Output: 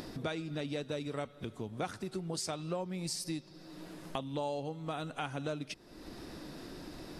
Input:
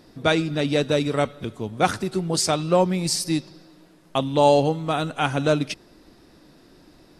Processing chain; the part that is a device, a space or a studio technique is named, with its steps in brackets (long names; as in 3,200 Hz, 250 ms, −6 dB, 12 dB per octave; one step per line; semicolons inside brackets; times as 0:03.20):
upward and downward compression (upward compression, threshold −36 dBFS; downward compressor 4 to 1, threshold −36 dBFS, peak gain reduction 20 dB)
level −1.5 dB